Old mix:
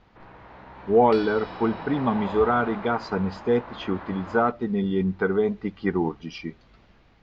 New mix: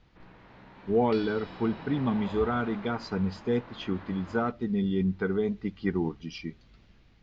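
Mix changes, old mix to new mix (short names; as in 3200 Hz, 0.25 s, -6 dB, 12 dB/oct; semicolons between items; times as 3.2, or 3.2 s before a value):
first sound: add HPF 130 Hz 24 dB/oct; second sound: add air absorption 84 m; master: add bell 840 Hz -10 dB 2.5 oct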